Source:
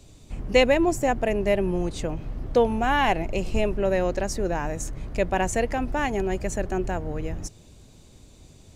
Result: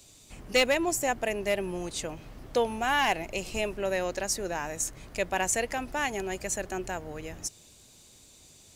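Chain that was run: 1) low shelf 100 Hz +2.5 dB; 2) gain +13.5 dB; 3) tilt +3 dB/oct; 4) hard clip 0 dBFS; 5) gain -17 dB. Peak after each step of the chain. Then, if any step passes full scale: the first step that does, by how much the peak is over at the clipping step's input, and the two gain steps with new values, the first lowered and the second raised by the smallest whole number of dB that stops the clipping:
-6.5, +7.0, +7.5, 0.0, -17.0 dBFS; step 2, 7.5 dB; step 2 +5.5 dB, step 5 -9 dB

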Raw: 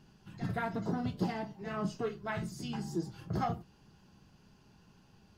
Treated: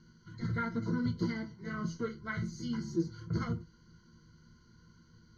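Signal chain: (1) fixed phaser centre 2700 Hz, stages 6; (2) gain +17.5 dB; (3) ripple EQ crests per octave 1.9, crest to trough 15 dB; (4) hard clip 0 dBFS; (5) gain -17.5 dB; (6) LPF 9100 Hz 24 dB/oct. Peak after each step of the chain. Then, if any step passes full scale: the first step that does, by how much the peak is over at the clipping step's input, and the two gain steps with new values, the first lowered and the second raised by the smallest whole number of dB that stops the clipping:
-22.0, -4.5, -2.5, -2.5, -20.0, -20.0 dBFS; no overload

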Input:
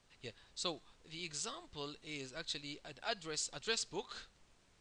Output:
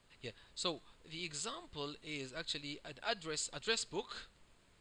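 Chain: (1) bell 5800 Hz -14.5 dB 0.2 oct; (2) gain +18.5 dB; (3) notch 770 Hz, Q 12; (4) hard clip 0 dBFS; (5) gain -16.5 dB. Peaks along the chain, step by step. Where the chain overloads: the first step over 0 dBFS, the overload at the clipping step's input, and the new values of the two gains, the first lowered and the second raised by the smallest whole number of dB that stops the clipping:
-22.5, -4.0, -4.5, -4.5, -21.0 dBFS; no overload

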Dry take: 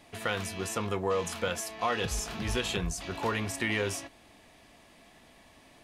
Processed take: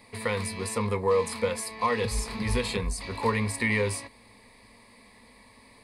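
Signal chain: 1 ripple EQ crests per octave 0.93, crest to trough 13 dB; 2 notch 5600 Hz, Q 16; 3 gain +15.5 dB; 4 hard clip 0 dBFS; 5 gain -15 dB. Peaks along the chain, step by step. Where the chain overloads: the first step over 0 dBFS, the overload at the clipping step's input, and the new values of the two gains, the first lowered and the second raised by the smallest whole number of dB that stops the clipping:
-12.5, -12.5, +3.0, 0.0, -15.0 dBFS; step 3, 3.0 dB; step 3 +12.5 dB, step 5 -12 dB

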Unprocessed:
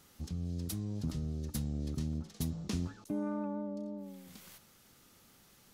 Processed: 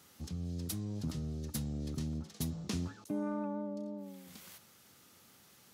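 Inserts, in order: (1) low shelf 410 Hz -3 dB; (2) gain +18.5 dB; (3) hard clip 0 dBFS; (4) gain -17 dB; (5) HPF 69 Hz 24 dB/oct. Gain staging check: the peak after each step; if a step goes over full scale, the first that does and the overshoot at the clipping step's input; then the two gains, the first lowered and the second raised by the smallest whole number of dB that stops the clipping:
-24.0, -5.5, -5.5, -22.5, -23.0 dBFS; no overload

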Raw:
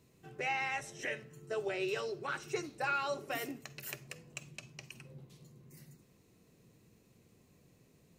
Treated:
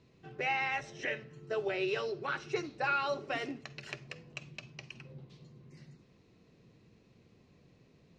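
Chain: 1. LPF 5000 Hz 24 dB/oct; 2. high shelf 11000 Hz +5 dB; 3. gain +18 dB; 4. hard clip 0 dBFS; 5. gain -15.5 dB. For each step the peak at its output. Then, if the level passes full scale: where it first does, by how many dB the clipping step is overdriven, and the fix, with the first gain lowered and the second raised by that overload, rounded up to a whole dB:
-23.5, -23.5, -5.5, -5.5, -21.0 dBFS; no overload

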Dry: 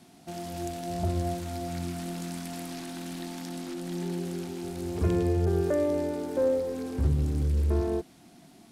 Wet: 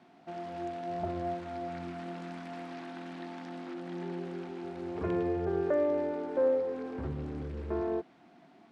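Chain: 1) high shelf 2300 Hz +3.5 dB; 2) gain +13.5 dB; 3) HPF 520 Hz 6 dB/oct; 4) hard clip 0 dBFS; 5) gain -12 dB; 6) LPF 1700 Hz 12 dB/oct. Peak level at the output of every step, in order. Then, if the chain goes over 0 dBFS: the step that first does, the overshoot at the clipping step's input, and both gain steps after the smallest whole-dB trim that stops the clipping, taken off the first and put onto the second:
-14.5, -1.0, -4.0, -4.0, -16.0, -18.5 dBFS; no overload

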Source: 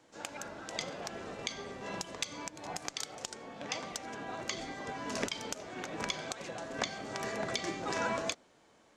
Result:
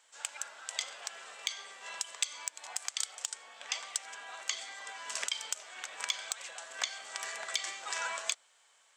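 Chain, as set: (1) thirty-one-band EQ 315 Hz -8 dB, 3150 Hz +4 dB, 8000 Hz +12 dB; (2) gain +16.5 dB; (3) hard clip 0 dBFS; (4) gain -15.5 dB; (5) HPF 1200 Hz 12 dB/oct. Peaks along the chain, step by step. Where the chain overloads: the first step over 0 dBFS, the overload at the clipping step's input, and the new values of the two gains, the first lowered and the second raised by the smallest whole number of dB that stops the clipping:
-12.5, +4.0, 0.0, -15.5, -12.5 dBFS; step 2, 4.0 dB; step 2 +12.5 dB, step 4 -11.5 dB

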